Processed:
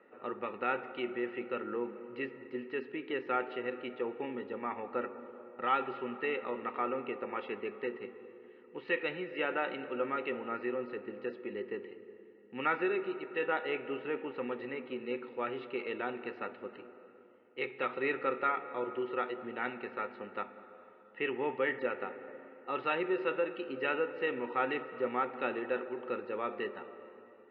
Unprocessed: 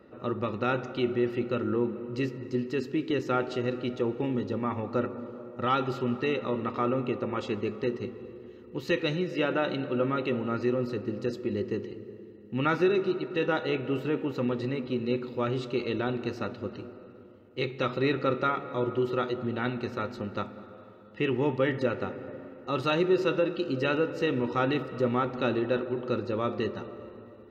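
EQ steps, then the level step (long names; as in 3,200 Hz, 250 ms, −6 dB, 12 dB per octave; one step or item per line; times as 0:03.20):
high-frequency loss of the air 77 metres
loudspeaker in its box 330–2,400 Hz, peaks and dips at 330 Hz −5 dB, 610 Hz −7 dB, 1,100 Hz −7 dB, 1,500 Hz −4 dB
low-shelf EQ 460 Hz −11 dB
+3.5 dB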